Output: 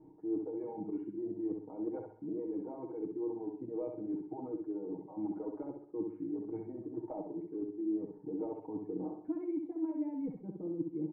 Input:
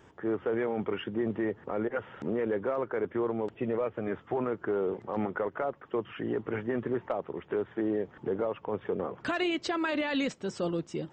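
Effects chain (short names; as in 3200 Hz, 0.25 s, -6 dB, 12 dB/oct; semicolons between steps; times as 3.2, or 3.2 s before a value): vocal tract filter u; reverse; compressor 16:1, threshold -43 dBFS, peak gain reduction 15.5 dB; reverse; reverb removal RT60 1.4 s; comb 6.4 ms, depth 96%; feedback echo 65 ms, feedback 40%, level -4.5 dB; on a send at -14.5 dB: reverb RT60 0.45 s, pre-delay 52 ms; on the sum: gain +6 dB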